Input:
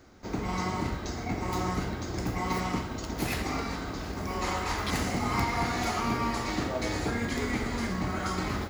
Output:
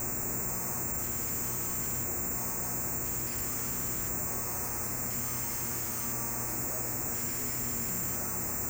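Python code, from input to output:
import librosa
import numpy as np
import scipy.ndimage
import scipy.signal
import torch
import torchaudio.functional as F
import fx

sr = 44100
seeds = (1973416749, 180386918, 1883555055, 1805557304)

p1 = np.sign(x) * np.sqrt(np.mean(np.square(x)))
p2 = fx.air_absorb(p1, sr, metres=360.0)
p3 = (np.kron(scipy.signal.resample_poly(p2, 1, 6), np.eye(6)[0]) * 6)[:len(p2)]
p4 = fx.filter_lfo_notch(p3, sr, shape='square', hz=0.49, low_hz=650.0, high_hz=3200.0, q=1.2)
p5 = p4 + fx.echo_single(p4, sr, ms=1193, db=-12.5, dry=0)
p6 = fx.dmg_buzz(p5, sr, base_hz=120.0, harmonics=22, level_db=-35.0, tilt_db=-4, odd_only=False)
y = p6 * 10.0 ** (-9.0 / 20.0)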